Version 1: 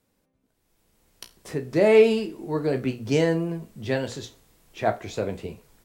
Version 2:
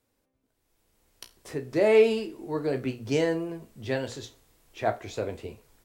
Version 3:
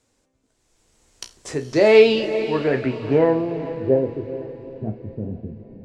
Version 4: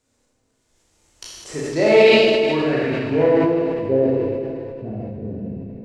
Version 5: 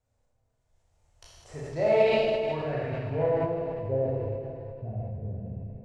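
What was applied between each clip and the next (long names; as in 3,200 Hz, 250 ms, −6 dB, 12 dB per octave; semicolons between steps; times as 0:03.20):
parametric band 180 Hz −12.5 dB 0.3 octaves; level −3 dB
low-pass filter sweep 7,300 Hz → 200 Hz, 0:01.59–0:04.70; feedback delay with all-pass diffusion 457 ms, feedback 45%, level −12 dB; level +7 dB
four-comb reverb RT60 1.5 s, combs from 26 ms, DRR −4.5 dB; level that may fall only so fast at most 23 dB per second; level −4.5 dB
drawn EQ curve 110 Hz 0 dB, 300 Hz −20 dB, 680 Hz −4 dB, 1,100 Hz −11 dB, 4,800 Hz −18 dB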